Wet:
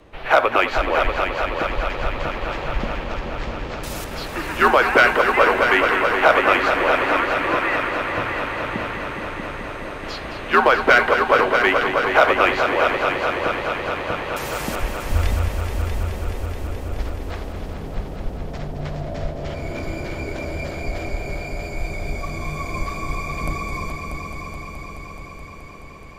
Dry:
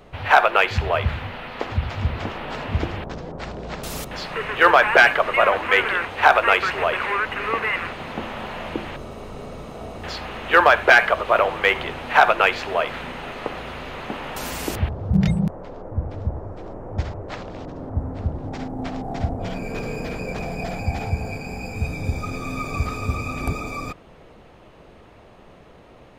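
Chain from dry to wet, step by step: multi-head delay 213 ms, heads all three, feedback 73%, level -10.5 dB; frequency shift -110 Hz; trim -1 dB

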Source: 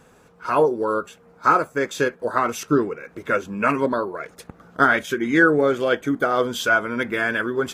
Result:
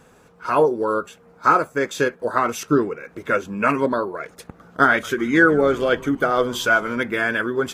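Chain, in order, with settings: 4.88–7.00 s: frequency-shifting echo 150 ms, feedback 53%, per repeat -130 Hz, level -20 dB; trim +1 dB

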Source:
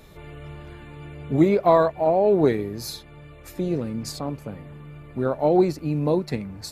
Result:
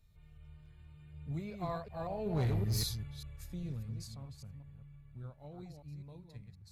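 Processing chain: chunks repeated in reverse 194 ms, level -6 dB; Doppler pass-by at 2.75 s, 10 m/s, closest 2.6 m; FFT filter 110 Hz 0 dB, 320 Hz -24 dB, 4.6 kHz -10 dB; overload inside the chain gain 35 dB; trim +7.5 dB

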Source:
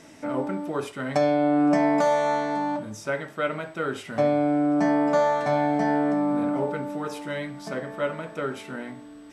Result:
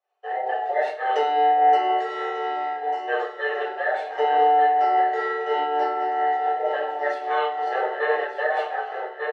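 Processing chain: every band turned upside down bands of 1 kHz; expander -31 dBFS; low-pass 3.2 kHz 12 dB/octave; feedback delay 1194 ms, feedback 27%, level -9.5 dB; simulated room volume 890 m³, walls furnished, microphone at 6 m; level rider gain up to 11.5 dB; steep high-pass 430 Hz 36 dB/octave; random flutter of the level, depth 65%; trim -4.5 dB

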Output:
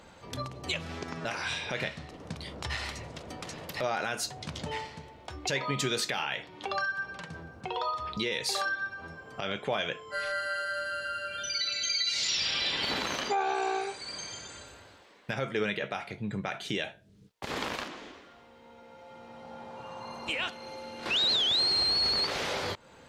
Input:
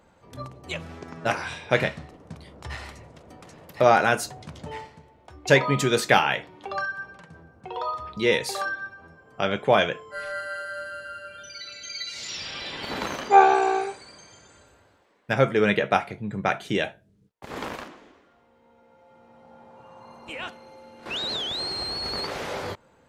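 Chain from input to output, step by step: compression 2:1, threshold -42 dBFS, peak gain reduction 17.5 dB; peaking EQ 4.1 kHz +8 dB 2 oct; peak limiter -23.5 dBFS, peak gain reduction 9 dB; trim +4.5 dB

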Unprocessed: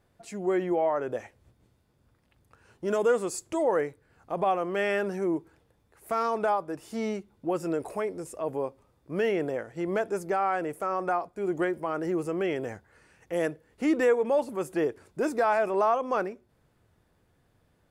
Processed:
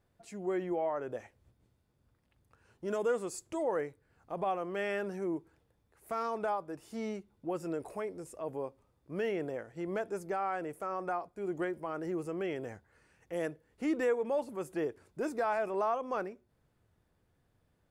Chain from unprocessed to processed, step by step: bass shelf 150 Hz +3 dB; trim -7.5 dB

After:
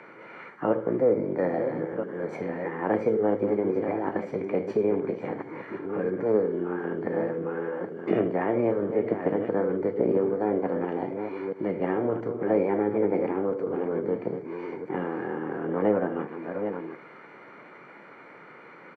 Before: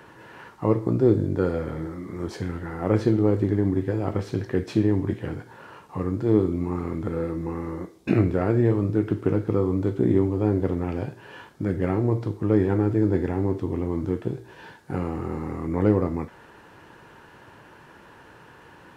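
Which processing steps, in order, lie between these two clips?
chunks repeated in reverse 678 ms, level -9 dB; Savitzky-Golay filter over 41 samples; on a send: delay 77 ms -16 dB; on the sum: formant shift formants +5 st; in parallel at 0 dB: compression, threshold -31 dBFS, peak gain reduction 16.5 dB; on the sum: high-pass 170 Hz 24 dB/octave; trim -4.5 dB

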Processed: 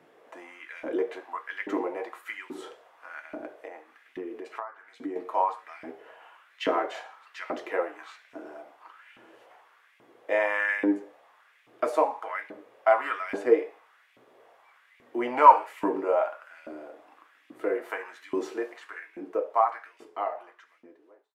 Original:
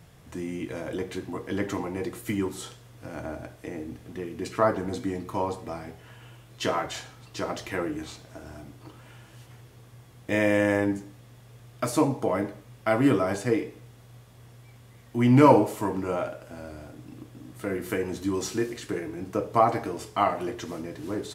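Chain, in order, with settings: fade out at the end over 3.49 s; three-band isolator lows -14 dB, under 280 Hz, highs -16 dB, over 2.7 kHz; 3.55–5.16 s: compression 12:1, threshold -37 dBFS, peak gain reduction 20 dB; LFO high-pass saw up 1.2 Hz 240–2500 Hz

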